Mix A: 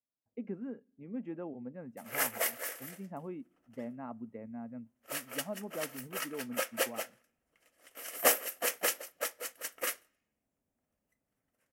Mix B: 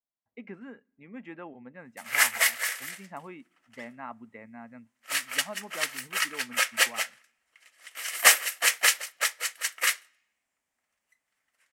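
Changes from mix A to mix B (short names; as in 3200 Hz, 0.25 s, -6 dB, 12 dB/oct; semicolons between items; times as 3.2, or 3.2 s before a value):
background: add low shelf 250 Hz -10 dB; master: add ten-band EQ 125 Hz -4 dB, 250 Hz -3 dB, 500 Hz -4 dB, 1000 Hz +6 dB, 2000 Hz +11 dB, 4000 Hz +11 dB, 8000 Hz +9 dB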